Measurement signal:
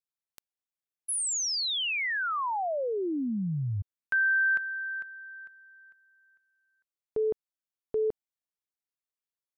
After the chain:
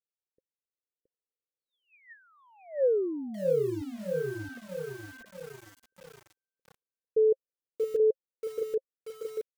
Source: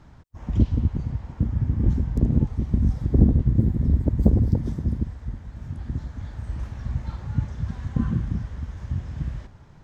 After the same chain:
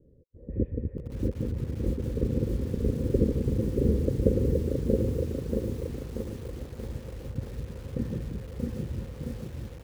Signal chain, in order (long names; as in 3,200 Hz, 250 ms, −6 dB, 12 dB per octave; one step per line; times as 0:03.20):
low-pass that shuts in the quiet parts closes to 390 Hz, open at −15 dBFS
formant resonators in series e
low shelf with overshoot 570 Hz +9 dB, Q 3
single-tap delay 671 ms −4 dB
feedback echo at a low word length 633 ms, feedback 55%, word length 8 bits, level −4 dB